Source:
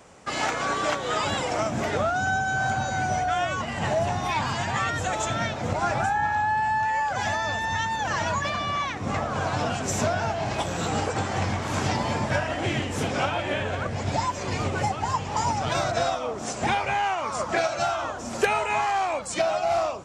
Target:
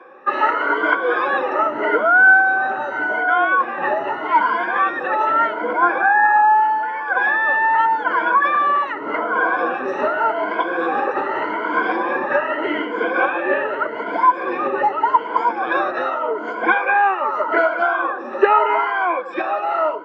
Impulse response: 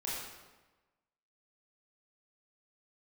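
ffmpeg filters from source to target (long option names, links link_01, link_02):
-af "afftfilt=real='re*pow(10,18/40*sin(2*PI*(1.8*log(max(b,1)*sr/1024/100)/log(2)-(0.83)*(pts-256)/sr)))':imag='im*pow(10,18/40*sin(2*PI*(1.8*log(max(b,1)*sr/1024/100)/log(2)-(0.83)*(pts-256)/sr)))':win_size=1024:overlap=0.75,highpass=frequency=310:width=0.5412,highpass=frequency=310:width=1.3066,equalizer=frequency=340:width_type=q:width=4:gain=7,equalizer=frequency=490:width_type=q:width=4:gain=4,equalizer=frequency=710:width_type=q:width=4:gain=-5,equalizer=frequency=1000:width_type=q:width=4:gain=6,equalizer=frequency=1500:width_type=q:width=4:gain=8,equalizer=frequency=2400:width_type=q:width=4:gain=-4,lowpass=frequency=2500:width=0.5412,lowpass=frequency=2500:width=1.3066,volume=2.5dB"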